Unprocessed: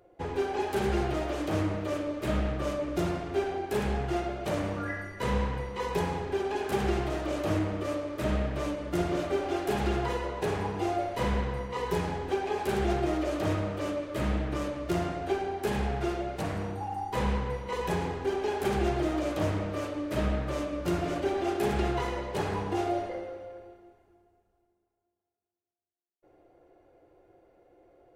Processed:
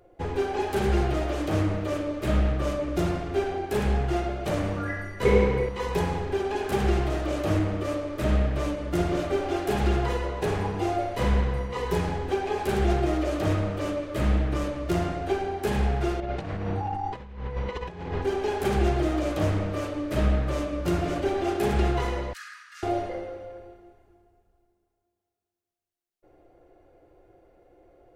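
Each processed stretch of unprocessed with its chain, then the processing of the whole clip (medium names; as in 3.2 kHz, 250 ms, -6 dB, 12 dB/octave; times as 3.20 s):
5.25–5.69 s: small resonant body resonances 410/2200 Hz, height 18 dB + flutter echo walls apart 9.3 m, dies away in 0.34 s
16.20–18.22 s: low-pass 4.3 kHz + compressor with a negative ratio -35 dBFS, ratio -0.5
22.33–22.83 s: rippled Chebyshev high-pass 1.2 kHz, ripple 6 dB + peaking EQ 3.5 kHz -7 dB 0.62 oct
whole clip: bass shelf 62 Hz +11 dB; band-stop 950 Hz, Q 22; trim +2.5 dB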